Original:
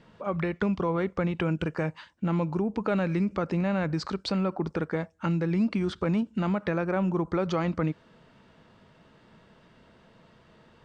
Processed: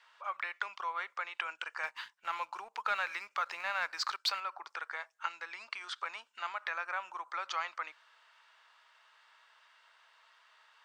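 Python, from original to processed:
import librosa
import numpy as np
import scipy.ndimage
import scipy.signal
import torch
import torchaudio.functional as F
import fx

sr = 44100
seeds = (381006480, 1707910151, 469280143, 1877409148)

y = scipy.signal.sosfilt(scipy.signal.butter(4, 1000.0, 'highpass', fs=sr, output='sos'), x)
y = fx.leveller(y, sr, passes=1, at=(1.83, 4.4))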